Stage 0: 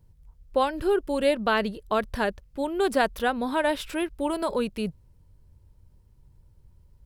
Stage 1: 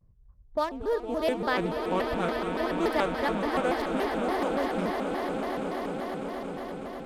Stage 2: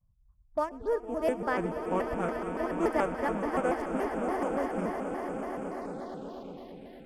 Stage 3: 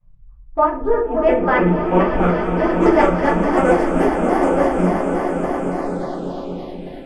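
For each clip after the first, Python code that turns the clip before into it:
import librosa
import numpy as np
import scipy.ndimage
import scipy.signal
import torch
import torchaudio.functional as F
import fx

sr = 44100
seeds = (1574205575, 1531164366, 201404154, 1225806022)

y1 = fx.wiener(x, sr, points=15)
y1 = fx.echo_swell(y1, sr, ms=119, loudest=8, wet_db=-10.5)
y1 = fx.vibrato_shape(y1, sr, shape='square', rate_hz=3.5, depth_cents=250.0)
y1 = y1 * librosa.db_to_amplitude(-4.5)
y2 = y1 + 10.0 ** (-19.5 / 20.0) * np.pad(y1, (int(120 * sr / 1000.0), 0))[:len(y1)]
y2 = fx.env_phaser(y2, sr, low_hz=360.0, high_hz=3900.0, full_db=-28.0)
y2 = fx.upward_expand(y2, sr, threshold_db=-39.0, expansion=1.5)
y3 = fx.filter_sweep_lowpass(y2, sr, from_hz=2000.0, to_hz=9100.0, start_s=0.92, end_s=3.9, q=1.0)
y3 = fx.room_shoebox(y3, sr, seeds[0], volume_m3=200.0, walls='furnished', distance_m=3.9)
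y3 = y3 * librosa.db_to_amplitude(5.5)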